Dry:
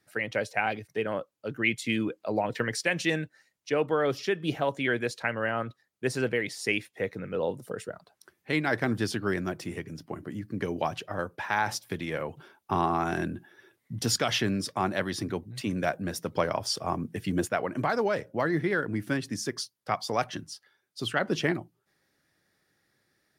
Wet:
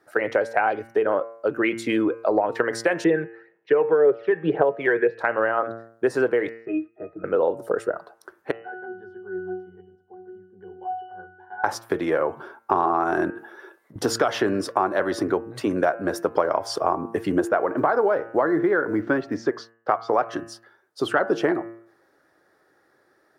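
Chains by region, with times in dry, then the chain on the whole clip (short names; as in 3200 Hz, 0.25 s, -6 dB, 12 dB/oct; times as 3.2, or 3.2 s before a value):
3.04–5.19 speaker cabinet 150–2900 Hz, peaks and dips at 170 Hz +9 dB, 260 Hz -8 dB, 440 Hz +10 dB, 650 Hz -3 dB, 1200 Hz -6 dB, 1800 Hz +4 dB + phaser 1.9 Hz, delay 1.2 ms, feedback 53%
6.49–7.24 HPF 53 Hz + air absorption 170 m + octave resonator D#, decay 0.13 s
8.51–11.64 low shelf 270 Hz -10 dB + octave resonator F#, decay 0.55 s
13.3–13.96 HPF 520 Hz 6 dB/oct + notch 1800 Hz, Q 15 + negative-ratio compressor -50 dBFS
17.52–20.26 Gaussian blur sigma 1.9 samples + companded quantiser 8-bit
whole clip: band shelf 690 Hz +15 dB 2.8 oct; de-hum 114.1 Hz, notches 26; compressor 4:1, threshold -18 dBFS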